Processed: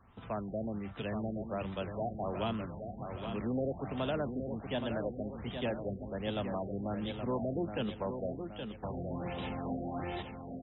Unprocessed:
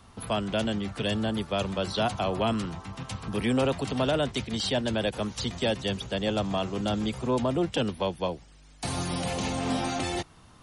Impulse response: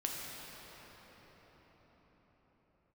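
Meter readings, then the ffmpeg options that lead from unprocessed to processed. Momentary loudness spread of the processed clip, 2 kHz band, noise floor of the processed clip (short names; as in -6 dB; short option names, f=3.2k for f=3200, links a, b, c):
6 LU, -11.0 dB, -47 dBFS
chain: -af "aecho=1:1:822|1644|2466|3288|4110|4932:0.447|0.232|0.121|0.0628|0.0327|0.017,afftfilt=real='re*lt(b*sr/1024,730*pow(4000/730,0.5+0.5*sin(2*PI*1.3*pts/sr)))':imag='im*lt(b*sr/1024,730*pow(4000/730,0.5+0.5*sin(2*PI*1.3*pts/sr)))':win_size=1024:overlap=0.75,volume=-8.5dB"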